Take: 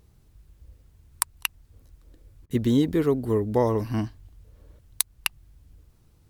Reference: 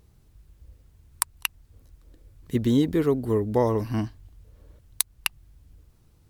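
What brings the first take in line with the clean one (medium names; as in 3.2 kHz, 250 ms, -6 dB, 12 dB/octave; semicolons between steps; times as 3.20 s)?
interpolate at 2.46 s, 43 ms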